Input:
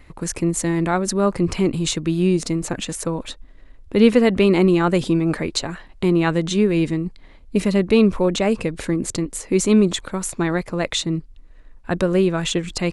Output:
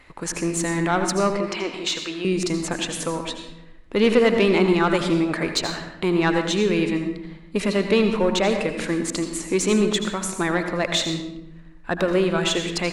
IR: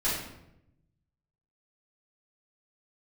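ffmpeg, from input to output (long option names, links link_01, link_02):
-filter_complex "[0:a]asettb=1/sr,asplit=3[link_01][link_02][link_03];[link_01]atrim=end=1.304[link_04];[link_02]atrim=start=1.3:end=2.25,asetpts=PTS-STARTPTS,afade=type=in:duration=0.004:curve=qsin,afade=type=out:start_time=0.946:duration=0.004:curve=qsin,acrossover=split=390 7000:gain=0.141 1 0.0891[link_05][link_06][link_07];[link_05][link_06][link_07]amix=inputs=3:normalize=0[link_08];[link_03]atrim=start=2.246[link_09];[link_04][link_08]acrossfade=duration=0.004:curve1=hsin:curve2=qsin[link_10];[link_10][link_09]acrossfade=duration=0.004:curve1=qsin:curve2=hsin,asplit=2[link_11][link_12];[link_12]highpass=frequency=720:poles=1,volume=14dB,asoftclip=type=tanh:threshold=-2dB[link_13];[link_11][link_13]amix=inputs=2:normalize=0,lowpass=frequency=4900:poles=1,volume=-6dB,asplit=2[link_14][link_15];[1:a]atrim=start_sample=2205,adelay=74[link_16];[link_15][link_16]afir=irnorm=-1:irlink=0,volume=-15dB[link_17];[link_14][link_17]amix=inputs=2:normalize=0,volume=-5.5dB"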